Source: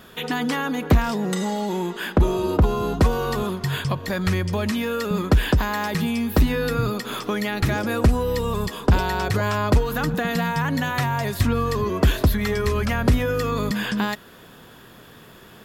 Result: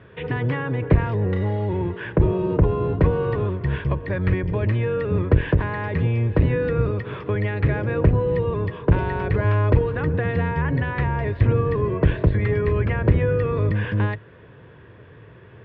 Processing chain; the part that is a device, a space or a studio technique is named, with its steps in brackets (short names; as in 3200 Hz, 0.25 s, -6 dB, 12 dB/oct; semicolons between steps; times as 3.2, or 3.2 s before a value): sub-octave bass pedal (octaver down 1 oct, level +2 dB; speaker cabinet 70–2300 Hz, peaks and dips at 110 Hz +4 dB, 230 Hz -10 dB, 460 Hz +4 dB, 760 Hz -8 dB, 1300 Hz -8 dB); 9.37–9.84 high shelf 8300 Hz +11 dB